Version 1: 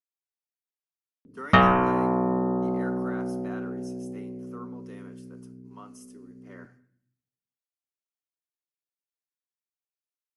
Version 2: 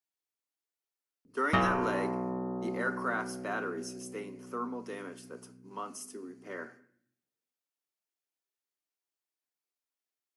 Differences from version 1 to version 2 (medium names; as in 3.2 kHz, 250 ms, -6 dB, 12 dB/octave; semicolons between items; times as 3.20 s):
speech +8.0 dB; background -10.0 dB